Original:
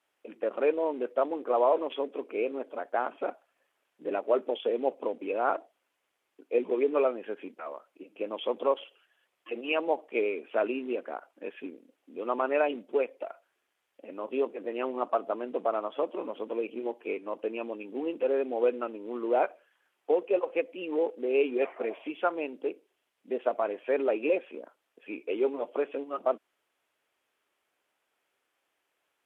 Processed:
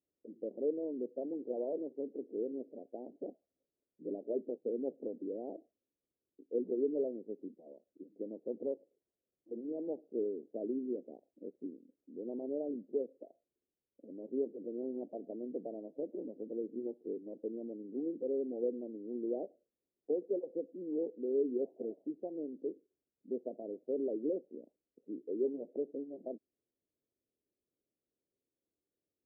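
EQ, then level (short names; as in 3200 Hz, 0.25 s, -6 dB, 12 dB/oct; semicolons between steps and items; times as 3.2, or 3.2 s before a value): Gaussian blur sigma 23 samples; +1.5 dB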